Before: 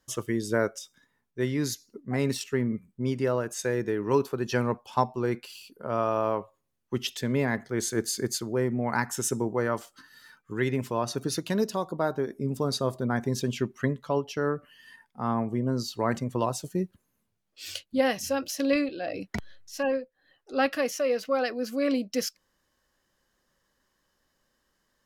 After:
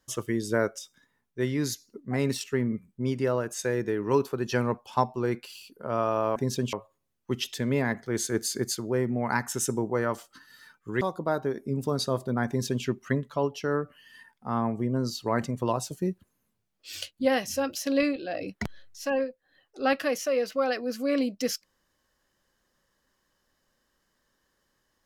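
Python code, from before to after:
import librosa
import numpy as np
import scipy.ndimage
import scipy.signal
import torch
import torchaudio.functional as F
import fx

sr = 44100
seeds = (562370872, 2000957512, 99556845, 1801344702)

y = fx.edit(x, sr, fx.cut(start_s=10.64, length_s=1.1),
    fx.duplicate(start_s=13.21, length_s=0.37, to_s=6.36), tone=tone)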